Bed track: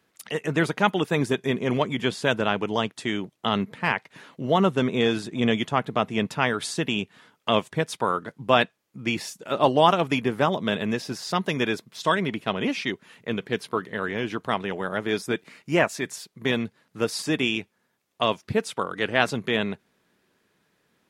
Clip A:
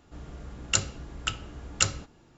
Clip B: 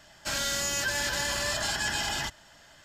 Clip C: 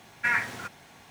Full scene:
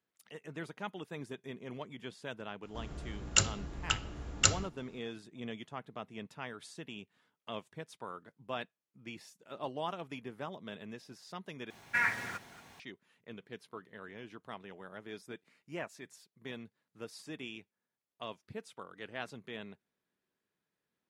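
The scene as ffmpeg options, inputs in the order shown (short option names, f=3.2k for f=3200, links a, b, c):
-filter_complex "[0:a]volume=-20dB[a];[3:a]aecho=1:1:228:0.178[b];[a]asplit=2[c][d];[c]atrim=end=11.704[e];[b]atrim=end=1.1,asetpts=PTS-STARTPTS,volume=-4.5dB[f];[d]atrim=start=12.796[g];[1:a]atrim=end=2.37,asetpts=PTS-STARTPTS,volume=-1.5dB,afade=t=in:d=0.004:c=hsin,afade=t=out:st=2.366:d=0.004:c=hsin,adelay=2630[h];[e][f]acrossfade=d=0.004:c1=hsin:c2=hsin[i];[i][g]acrossfade=d=0.004:c1=hsin:c2=hsin[j];[j][h]amix=inputs=2:normalize=0"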